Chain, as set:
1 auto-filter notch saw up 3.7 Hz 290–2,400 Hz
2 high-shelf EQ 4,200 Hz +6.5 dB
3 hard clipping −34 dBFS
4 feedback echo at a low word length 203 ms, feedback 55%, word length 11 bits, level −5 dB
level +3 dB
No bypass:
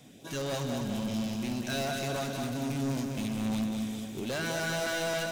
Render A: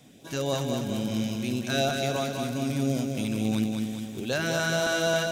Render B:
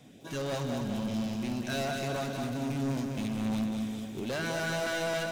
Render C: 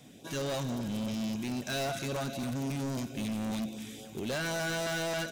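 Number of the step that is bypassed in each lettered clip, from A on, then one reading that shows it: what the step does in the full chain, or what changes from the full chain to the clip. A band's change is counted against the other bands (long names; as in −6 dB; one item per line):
3, distortion level −7 dB
2, 8 kHz band −3.5 dB
4, change in integrated loudness −1.5 LU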